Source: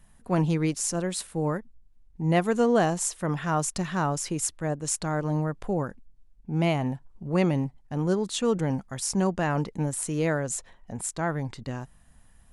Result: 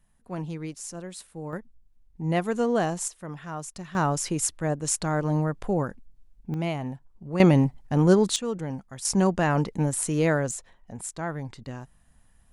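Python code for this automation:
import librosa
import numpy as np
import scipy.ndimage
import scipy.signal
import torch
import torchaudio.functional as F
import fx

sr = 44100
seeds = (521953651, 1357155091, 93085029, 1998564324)

y = fx.gain(x, sr, db=fx.steps((0.0, -9.5), (1.53, -2.5), (3.08, -9.5), (3.95, 2.0), (6.54, -4.5), (7.4, 7.0), (8.36, -5.5), (9.05, 3.0), (10.51, -3.5)))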